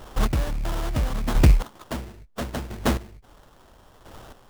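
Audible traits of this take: a buzz of ramps at a fixed pitch in blocks of 8 samples; chopped level 0.74 Hz, depth 65%, duty 20%; aliases and images of a low sample rate 2.3 kHz, jitter 20%

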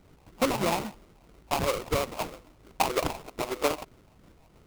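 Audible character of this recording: phasing stages 8, 3.1 Hz, lowest notch 410–1400 Hz; aliases and images of a low sample rate 1.7 kHz, jitter 20%

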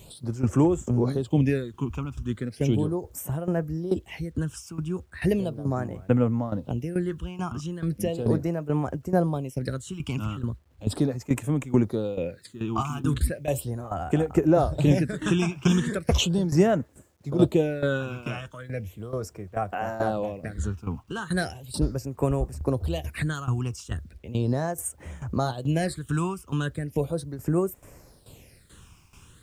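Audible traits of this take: phasing stages 8, 0.37 Hz, lowest notch 540–4300 Hz; tremolo saw down 2.3 Hz, depth 80%; a quantiser's noise floor 12-bit, dither none

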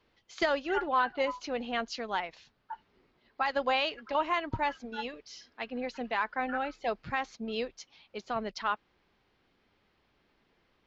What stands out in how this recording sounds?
noise floor -73 dBFS; spectral tilt -1.5 dB/octave

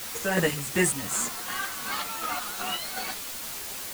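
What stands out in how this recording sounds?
chopped level 2.7 Hz, depth 60%, duty 45%; a quantiser's noise floor 6-bit, dither triangular; a shimmering, thickened sound

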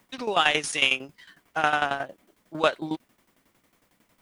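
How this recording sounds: a quantiser's noise floor 12-bit, dither triangular; tremolo saw down 11 Hz, depth 80%

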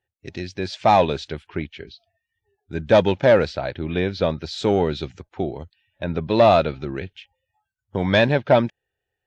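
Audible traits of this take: noise floor -84 dBFS; spectral tilt -4.5 dB/octave

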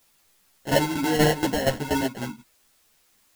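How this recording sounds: aliases and images of a low sample rate 1.2 kHz, jitter 0%; tremolo saw down 4.2 Hz, depth 80%; a quantiser's noise floor 12-bit, dither triangular; a shimmering, thickened sound

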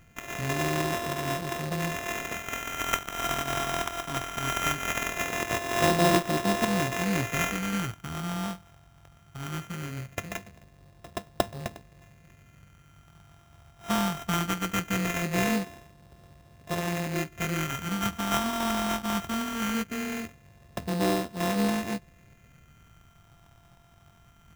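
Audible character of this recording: a buzz of ramps at a fixed pitch in blocks of 64 samples; phasing stages 4, 0.2 Hz, lowest notch 440–1600 Hz; aliases and images of a low sample rate 4.5 kHz, jitter 0%

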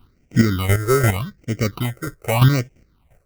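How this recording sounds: chopped level 2.9 Hz, depth 60%, duty 20%; aliases and images of a low sample rate 1.7 kHz, jitter 0%; phasing stages 6, 0.83 Hz, lowest notch 210–1100 Hz

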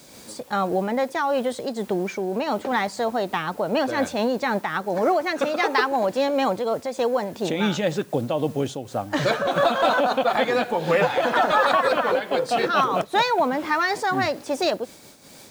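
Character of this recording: a quantiser's noise floor 8-bit, dither triangular; random flutter of the level

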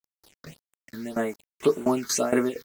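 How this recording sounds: tremolo saw down 4.3 Hz, depth 90%; a quantiser's noise floor 8-bit, dither none; phasing stages 6, 1.8 Hz, lowest notch 690–4900 Hz; MP3

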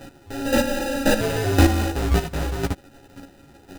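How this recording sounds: a buzz of ramps at a fixed pitch in blocks of 32 samples; chopped level 1.9 Hz, depth 65%, duty 15%; aliases and images of a low sample rate 1.1 kHz, jitter 0%; a shimmering, thickened sound

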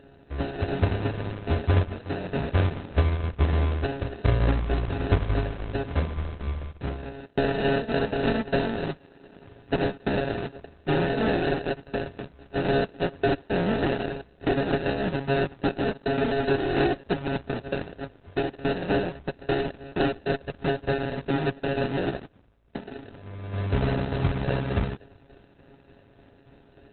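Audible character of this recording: a buzz of ramps at a fixed pitch in blocks of 64 samples; tremolo saw down 3.4 Hz, depth 45%; aliases and images of a low sample rate 1.1 kHz, jitter 0%; Opus

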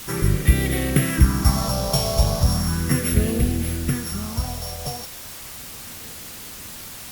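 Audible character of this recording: a buzz of ramps at a fixed pitch in blocks of 8 samples; phasing stages 4, 0.36 Hz, lowest notch 300–1000 Hz; a quantiser's noise floor 6-bit, dither triangular; Opus

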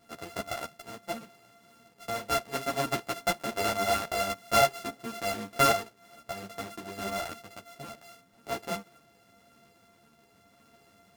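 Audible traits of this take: a buzz of ramps at a fixed pitch in blocks of 64 samples; tremolo triangle 0.76 Hz, depth 30%; a shimmering, thickened sound

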